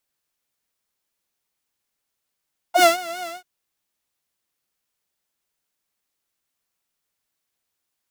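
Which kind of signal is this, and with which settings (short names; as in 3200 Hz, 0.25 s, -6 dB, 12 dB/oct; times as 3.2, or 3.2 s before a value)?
synth patch with vibrato F5, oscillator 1 saw, detune 20 cents, sub -20.5 dB, noise -20 dB, filter highpass, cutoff 170 Hz, Q 5.1, filter envelope 2.5 oct, filter decay 0.07 s, filter sustain 5%, attack 90 ms, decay 0.14 s, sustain -19 dB, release 0.15 s, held 0.54 s, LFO 5 Hz, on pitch 89 cents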